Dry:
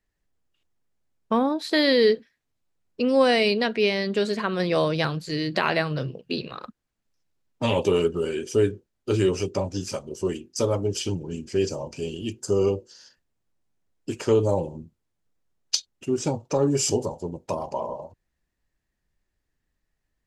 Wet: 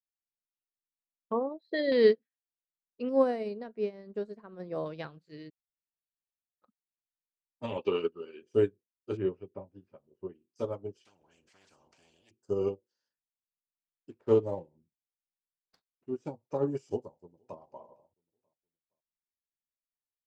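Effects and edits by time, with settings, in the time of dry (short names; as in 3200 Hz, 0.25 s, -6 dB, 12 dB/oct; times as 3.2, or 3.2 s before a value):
1.32–1.92 formant sharpening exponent 2
3.09–4.86 bell 2900 Hz -13.5 dB 1.8 oct
5.5–6.62 room tone
7.77–8.42 speaker cabinet 140–5400 Hz, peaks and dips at 150 Hz -9 dB, 650 Hz -6 dB, 1200 Hz +6 dB, 2600 Hz +9 dB, 4500 Hz +9 dB
9.17–10.42 air absorption 480 m
11.05–12.31 spectral compressor 10:1
14.1–16.15 median filter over 15 samples
16.9–17.59 echo throw 0.47 s, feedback 40%, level -17.5 dB
whole clip: LPF 1600 Hz 6 dB/oct; low shelf 84 Hz -11.5 dB; upward expander 2.5:1, over -35 dBFS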